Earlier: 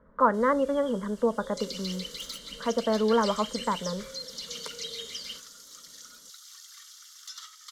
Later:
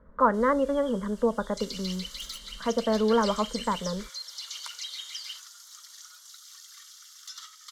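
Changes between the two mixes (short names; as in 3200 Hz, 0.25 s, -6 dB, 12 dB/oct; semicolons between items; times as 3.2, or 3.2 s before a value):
first sound: add steep high-pass 730 Hz 48 dB/oct; master: add low shelf 78 Hz +10.5 dB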